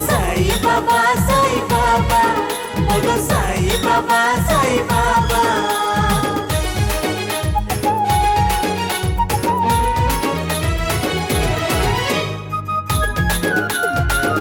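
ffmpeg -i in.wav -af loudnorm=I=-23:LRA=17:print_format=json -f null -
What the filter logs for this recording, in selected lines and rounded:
"input_i" : "-17.2",
"input_tp" : "-5.9",
"input_lra" : "2.6",
"input_thresh" : "-27.2",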